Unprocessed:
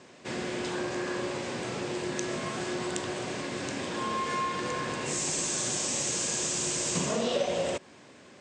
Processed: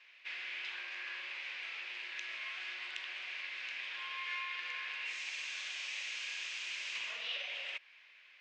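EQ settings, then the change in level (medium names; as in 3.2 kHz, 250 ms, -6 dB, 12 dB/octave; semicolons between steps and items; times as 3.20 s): resonant high-pass 2.4 kHz, resonance Q 2.9; distance through air 280 m; -2.5 dB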